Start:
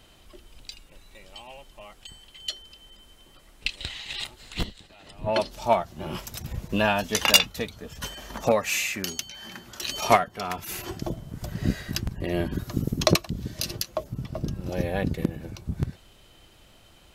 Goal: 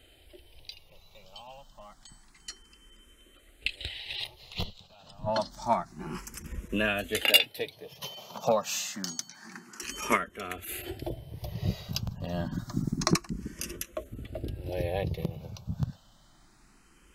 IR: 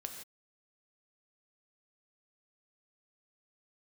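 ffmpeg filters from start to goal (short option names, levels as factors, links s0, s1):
-filter_complex "[0:a]asettb=1/sr,asplit=3[s0][s1][s2];[s0]atrim=end=7.214[s3];[s1]atrim=start=7.21:end=9.83,asetpts=PTS-STARTPTS,afade=t=in:d=0.004:c=qsin,afade=t=out:st=2.616:d=0.004:c=qsin,highpass=f=140:w=0.5412,highpass=f=140:w=1.3066[s4];[s2]atrim=start=9.826[s5];[s3][s4]acrossfade=d=0.004:c1=hsin:c2=qsin[s6];[s6][s5]acrossfade=d=0.004:c1=qsin:c2=hsin,asplit=2[s7][s8];[s8]afreqshift=0.28[s9];[s7][s9]amix=inputs=2:normalize=1,volume=0.841"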